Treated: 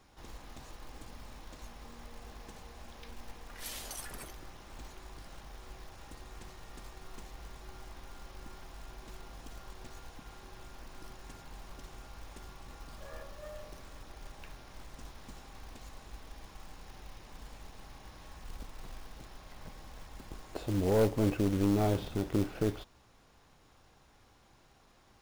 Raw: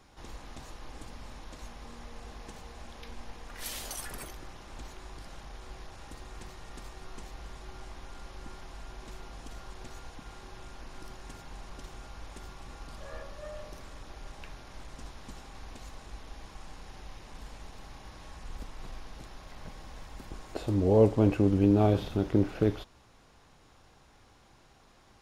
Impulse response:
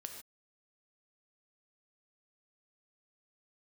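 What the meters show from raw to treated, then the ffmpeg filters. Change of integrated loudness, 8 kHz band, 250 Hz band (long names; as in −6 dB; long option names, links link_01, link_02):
−7.5 dB, −2.0 dB, −5.0 dB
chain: -af "aeval=exprs='(tanh(7.08*val(0)+0.35)-tanh(0.35))/7.08':channel_layout=same,acrusher=bits=4:mode=log:mix=0:aa=0.000001,volume=-2.5dB"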